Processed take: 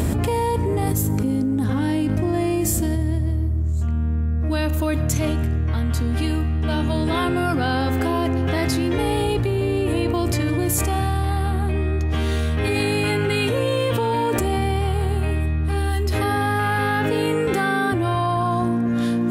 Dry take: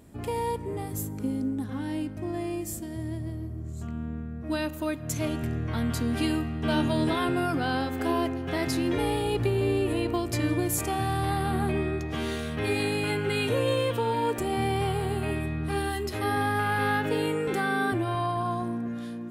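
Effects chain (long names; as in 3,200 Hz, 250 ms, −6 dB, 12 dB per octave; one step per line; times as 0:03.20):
parametric band 76 Hz +12 dB 0.44 octaves
envelope flattener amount 100%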